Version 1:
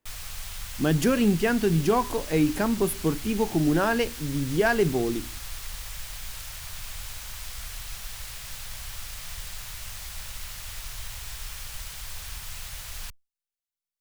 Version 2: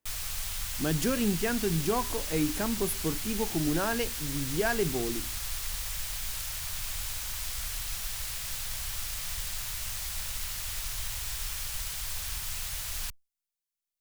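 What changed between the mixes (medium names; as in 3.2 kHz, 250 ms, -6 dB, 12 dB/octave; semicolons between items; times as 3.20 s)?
speech -6.5 dB; master: add treble shelf 4.2 kHz +5 dB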